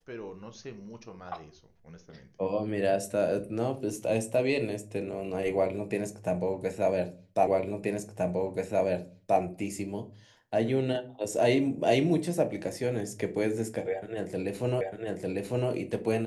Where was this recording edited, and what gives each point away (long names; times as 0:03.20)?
0:07.47: the same again, the last 1.93 s
0:14.81: the same again, the last 0.9 s